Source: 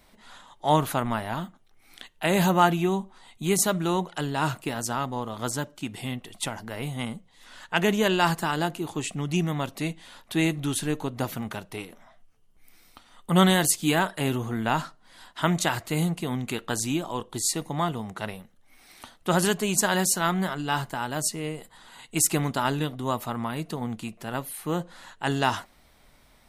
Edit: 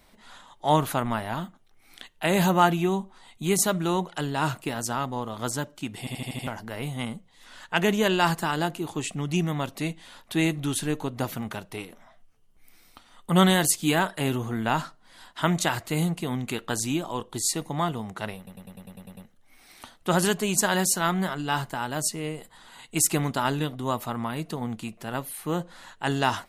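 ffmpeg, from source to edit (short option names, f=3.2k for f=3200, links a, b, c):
-filter_complex "[0:a]asplit=15[a][b][c][d][e][f][g][h][i][j][k][l][m][n][o];[a]atrim=end=6.072[p];[b]atrim=start=5.988:end=6.072[q];[c]atrim=start=5.988:end=6.072[r];[d]atrim=start=5.988:end=6.072[s];[e]atrim=start=5.988:end=6.072[t];[f]atrim=start=5.988:end=6.072[u];[g]atrim=start=6.468:end=18.472[v];[h]atrim=start=18.368:end=18.472[w];[i]atrim=start=18.368:end=18.472[x];[j]atrim=start=18.368:end=18.472[y];[k]atrim=start=18.368:end=18.472[z];[l]atrim=start=18.368:end=18.472[aa];[m]atrim=start=18.368:end=18.472[ab];[n]atrim=start=18.368:end=18.472[ac];[o]atrim=start=18.368[ad];[p][q]acrossfade=d=0.004:c1=hsin:c2=hsin[ae];[ae][r]acrossfade=d=0.004:c1=hsin:c2=hsin[af];[af][s]acrossfade=d=0.004:c1=hsin:c2=hsin[ag];[ag][t]acrossfade=d=0.004:c1=hsin:c2=hsin[ah];[ah][u]acrossfade=d=0.004:c1=hsin:c2=hsin[ai];[ai][v]acrossfade=d=0.004:c1=hsin:c2=hsin[aj];[aj][w]acrossfade=d=0.004:c1=hsin:c2=hsin[ak];[ak][x]acrossfade=d=0.004:c1=hsin:c2=hsin[al];[al][y]acrossfade=d=0.004:c1=hsin:c2=hsin[am];[am][z]acrossfade=d=0.004:c1=hsin:c2=hsin[an];[an][aa]acrossfade=d=0.004:c1=hsin:c2=hsin[ao];[ao][ab]acrossfade=d=0.004:c1=hsin:c2=hsin[ap];[ap][ac]acrossfade=d=0.004:c1=hsin:c2=hsin[aq];[aq][ad]acrossfade=d=0.004:c1=hsin:c2=hsin"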